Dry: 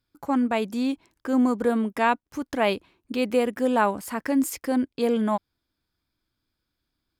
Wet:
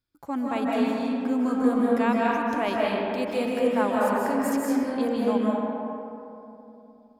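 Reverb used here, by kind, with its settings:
comb and all-pass reverb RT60 3 s, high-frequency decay 0.4×, pre-delay 115 ms, DRR −5 dB
level −6.5 dB

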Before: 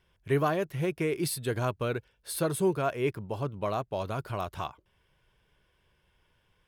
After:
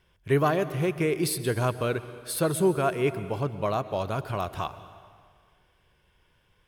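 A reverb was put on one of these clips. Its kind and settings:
dense smooth reverb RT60 1.9 s, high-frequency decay 0.85×, pre-delay 110 ms, DRR 13.5 dB
level +3.5 dB

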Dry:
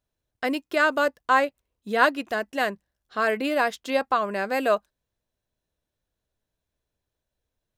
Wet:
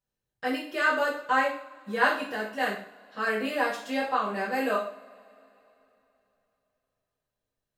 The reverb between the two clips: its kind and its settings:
coupled-rooms reverb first 0.47 s, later 3.3 s, from −27 dB, DRR −9.5 dB
level −13 dB

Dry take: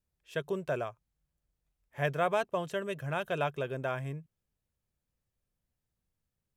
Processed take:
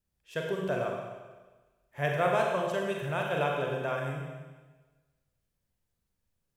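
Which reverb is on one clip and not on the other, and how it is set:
four-comb reverb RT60 1.3 s, combs from 33 ms, DRR −0.5 dB

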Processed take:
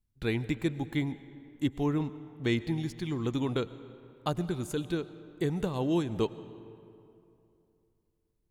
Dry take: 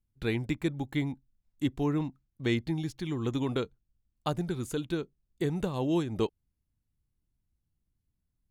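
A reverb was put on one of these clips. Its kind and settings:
comb and all-pass reverb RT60 2.8 s, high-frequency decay 0.6×, pre-delay 70 ms, DRR 15 dB

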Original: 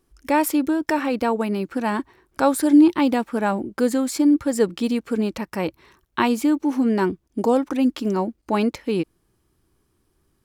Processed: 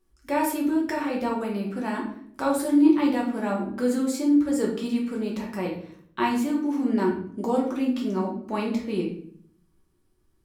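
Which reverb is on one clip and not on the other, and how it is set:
rectangular room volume 92 cubic metres, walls mixed, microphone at 1.1 metres
level −9.5 dB

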